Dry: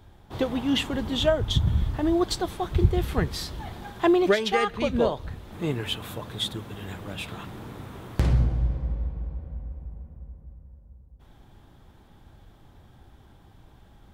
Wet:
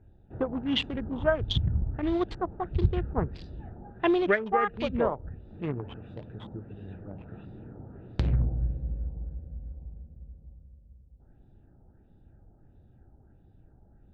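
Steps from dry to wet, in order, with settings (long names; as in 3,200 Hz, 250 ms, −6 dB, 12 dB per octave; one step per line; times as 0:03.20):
adaptive Wiener filter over 41 samples
dynamic equaliser 4,100 Hz, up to −5 dB, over −49 dBFS, Q 2.4
auto-filter low-pass sine 1.5 Hz 980–4,200 Hz
level −4 dB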